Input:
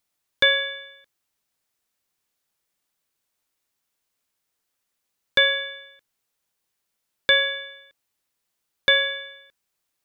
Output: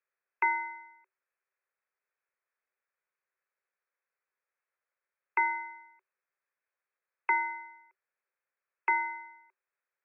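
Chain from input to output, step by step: frequency inversion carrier 2.6 kHz; rippled Chebyshev high-pass 370 Hz, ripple 6 dB; peaking EQ 1.7 kHz +3.5 dB 0.38 oct; trim -3.5 dB

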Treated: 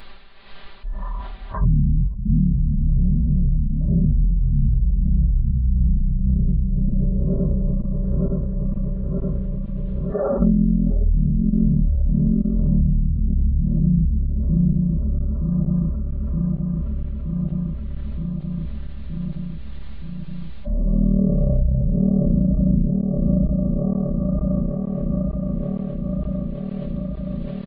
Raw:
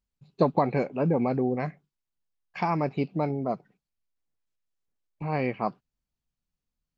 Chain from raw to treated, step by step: backward echo that repeats 116 ms, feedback 69%, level -2.5 dB; tremolo 6.8 Hz, depth 56%; low-pass that closes with the level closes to 490 Hz, closed at -22 dBFS; wide varispeed 0.252×; treble shelf 4.6 kHz +8 dB; comb 5.1 ms, depth 95%; level flattener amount 70%; trim +3.5 dB

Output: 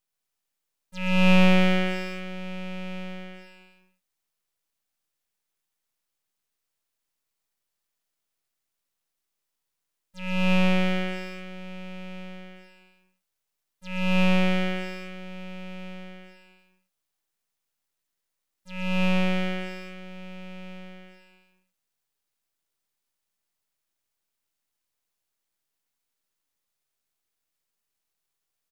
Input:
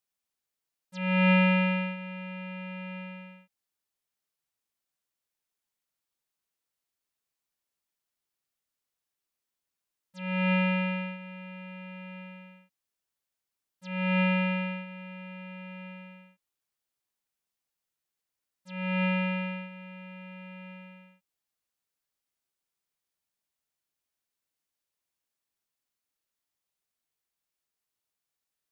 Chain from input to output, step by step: bouncing-ball echo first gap 130 ms, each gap 0.9×, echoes 5; half-wave rectifier; trim +6 dB

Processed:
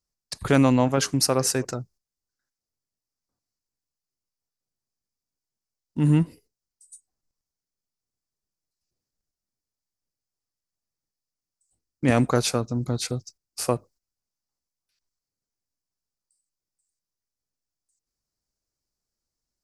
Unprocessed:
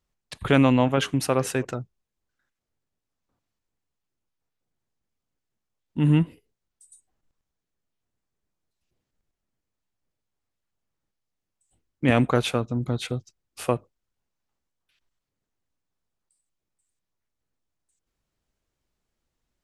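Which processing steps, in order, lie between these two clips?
gate -51 dBFS, range -9 dB; resonant high shelf 4 kHz +7 dB, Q 3

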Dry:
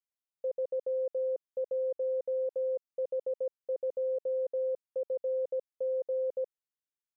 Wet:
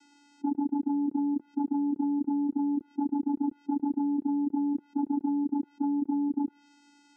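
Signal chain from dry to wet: formant shift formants -4 st; vocoder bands 8, square 287 Hz; low-pass that closes with the level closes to 350 Hz, closed at -29 dBFS; level flattener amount 70%; trim +6 dB

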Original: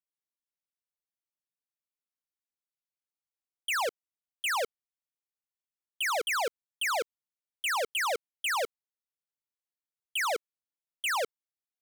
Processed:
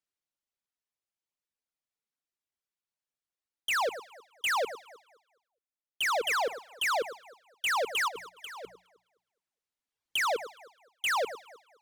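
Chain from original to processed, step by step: reverb removal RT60 1.7 s; hum notches 60/120/180 Hz; 8.08–10.16 s: compressor with a negative ratio -38 dBFS, ratio -0.5; echo whose repeats swap between lows and highs 104 ms, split 920 Hz, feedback 53%, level -12.5 dB; decimation joined by straight lines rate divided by 2×; trim +1.5 dB

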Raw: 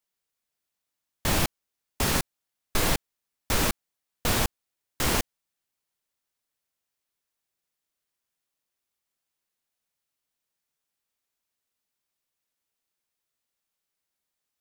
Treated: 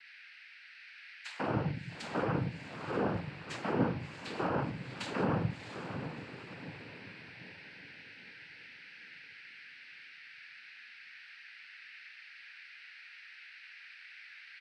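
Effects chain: level-controlled noise filter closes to 1.2 kHz, open at -26.5 dBFS; spectral gate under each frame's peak -25 dB strong; low-pass that closes with the level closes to 1.1 kHz, closed at -25.5 dBFS; compression 2.5:1, threshold -34 dBFS, peak gain reduction 9.5 dB; chord resonator G2 sus4, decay 0.26 s; three bands offset in time highs, mids, lows 140/210 ms, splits 210/1800 Hz; whistle 2.4 kHz -69 dBFS; on a send: echo that smears into a reverb 671 ms, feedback 45%, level -8.5 dB; on the sum: simulated room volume 230 m³, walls furnished, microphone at 1.6 m; noise-vocoded speech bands 8; trim +15.5 dB

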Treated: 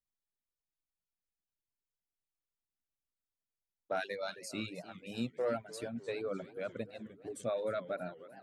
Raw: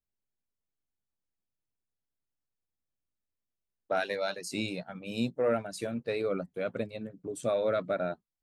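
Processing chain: reverb removal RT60 1.3 s; modulated delay 307 ms, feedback 61%, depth 205 cents, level -16.5 dB; trim -5.5 dB

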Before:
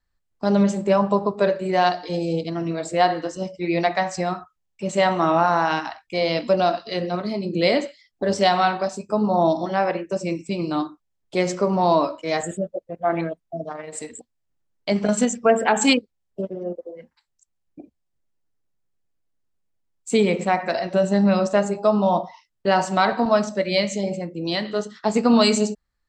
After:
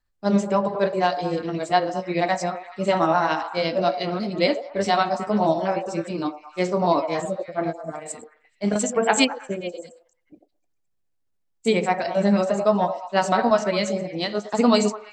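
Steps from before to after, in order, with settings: repeats whose band climbs or falls 184 ms, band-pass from 610 Hz, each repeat 0.7 oct, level -8 dB; granular stretch 0.58×, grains 141 ms

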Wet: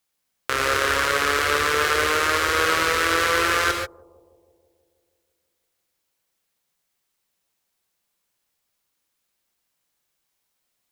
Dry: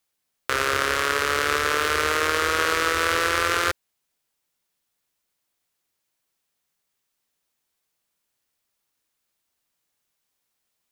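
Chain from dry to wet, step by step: bucket-brigade echo 161 ms, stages 1024, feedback 67%, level -22.5 dB; gated-style reverb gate 160 ms rising, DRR 2.5 dB

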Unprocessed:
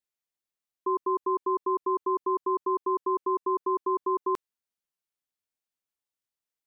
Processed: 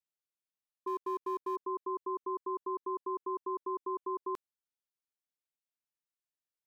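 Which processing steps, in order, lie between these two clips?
0.87–1.56 s: companding laws mixed up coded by mu; trim -9 dB

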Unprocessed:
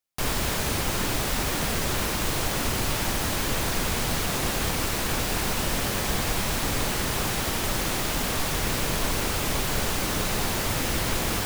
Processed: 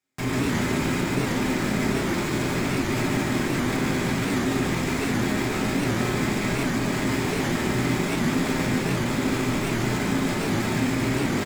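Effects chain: low-pass 2.4 kHz 6 dB/octave; peaking EQ 280 Hz +13 dB 1.1 oct; peak limiter -24 dBFS, peak gain reduction 13.5 dB; saturation -28.5 dBFS, distortion -16 dB; loudspeakers at several distances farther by 50 m -3 dB, 96 m -11 dB; reverberation RT60 0.50 s, pre-delay 3 ms, DRR -3 dB; warped record 78 rpm, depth 160 cents; trim +6 dB

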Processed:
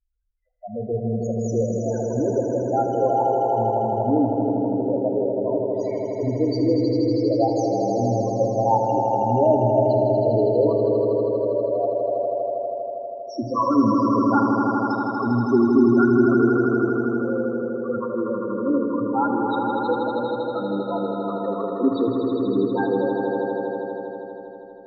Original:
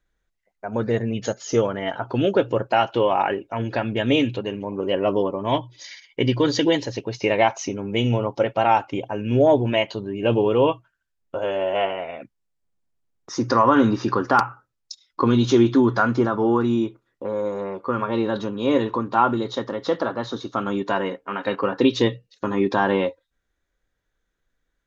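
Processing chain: dynamic bell 3.5 kHz, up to -5 dB, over -47 dBFS, Q 5.2; Chebyshev shaper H 3 -24 dB, 6 -36 dB, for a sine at -3.5 dBFS; loudest bins only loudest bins 4; on a send: echo with a slow build-up 80 ms, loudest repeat 5, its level -6.5 dB; on the sum: FDN reverb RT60 2.3 s, high-frequency decay 0.55×, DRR 9 dB

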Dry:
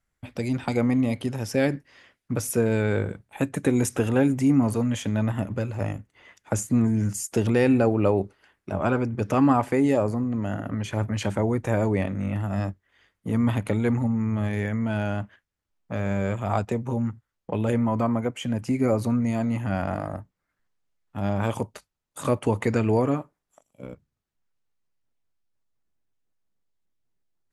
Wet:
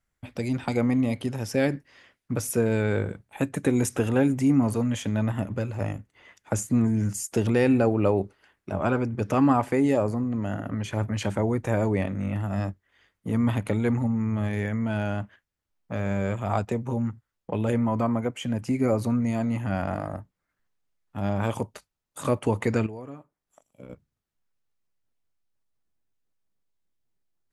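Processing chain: 22.86–23.90 s: compression 3:1, threshold -41 dBFS, peak gain reduction 17 dB; trim -1 dB

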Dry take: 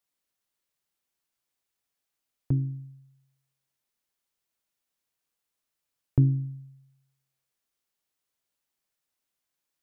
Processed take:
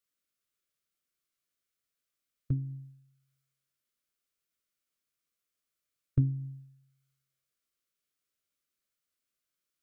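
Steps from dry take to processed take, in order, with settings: Butterworth band-stop 860 Hz, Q 2; formant shift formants -3 st; trim -3 dB

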